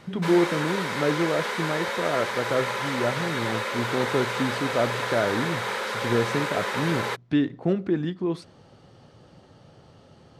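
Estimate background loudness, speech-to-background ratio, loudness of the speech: -28.5 LUFS, 1.0 dB, -27.5 LUFS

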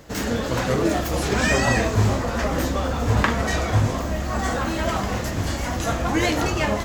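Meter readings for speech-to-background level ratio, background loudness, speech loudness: -5.0 dB, -23.0 LUFS, -28.0 LUFS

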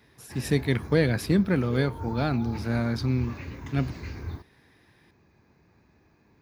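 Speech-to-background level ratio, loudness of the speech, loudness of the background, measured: 12.0 dB, -27.0 LUFS, -39.0 LUFS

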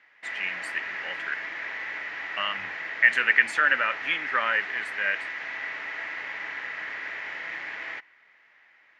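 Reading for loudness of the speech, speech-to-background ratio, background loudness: -25.0 LUFS, 8.0 dB, -33.0 LUFS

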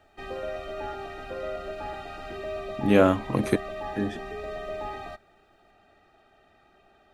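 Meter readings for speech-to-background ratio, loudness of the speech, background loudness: 11.5 dB, -25.0 LUFS, -36.5 LUFS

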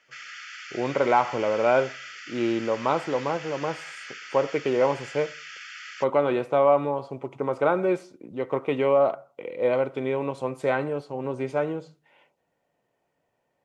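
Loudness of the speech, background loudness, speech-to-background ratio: -25.5 LUFS, -39.5 LUFS, 14.0 dB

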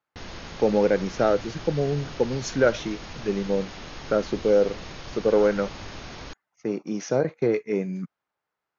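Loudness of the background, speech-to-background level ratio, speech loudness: -39.5 LUFS, 14.5 dB, -25.0 LUFS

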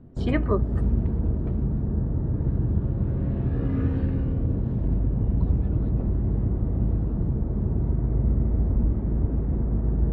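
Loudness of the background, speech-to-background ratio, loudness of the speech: -26.0 LUFS, -2.5 dB, -28.5 LUFS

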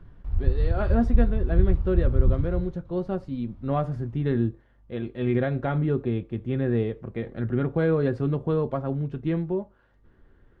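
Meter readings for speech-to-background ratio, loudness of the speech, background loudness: -1.5 dB, -27.5 LUFS, -26.0 LUFS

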